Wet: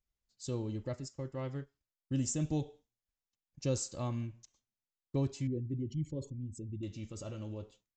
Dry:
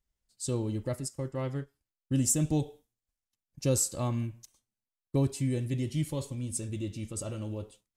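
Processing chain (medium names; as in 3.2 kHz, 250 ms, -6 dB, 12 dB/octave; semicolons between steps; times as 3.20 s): 5.47–6.83 s: resonances exaggerated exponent 2; resampled via 16 kHz; trim -5.5 dB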